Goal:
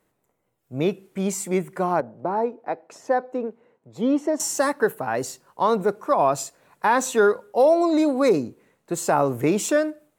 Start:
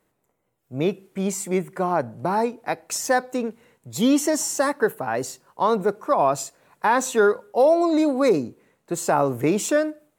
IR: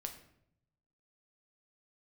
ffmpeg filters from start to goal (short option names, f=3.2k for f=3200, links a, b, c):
-filter_complex "[0:a]asettb=1/sr,asplit=3[a][b][c];[a]atrim=end=2.004[d];[b]atrim=start=2:end=4.4,asetpts=PTS-STARTPTS,afade=t=in:d=0.004:c=qsin,afade=t=out:st=2.396:d=0.004:c=qsin,bandpass=f=510:t=q:w=0.76:csg=0[e];[c]atrim=start=4.396[f];[d][e]acrossfade=d=0.004:c1=hsin:c2=qsin[g];[g][f]acrossfade=d=0.004:c1=qsin:c2=hsin"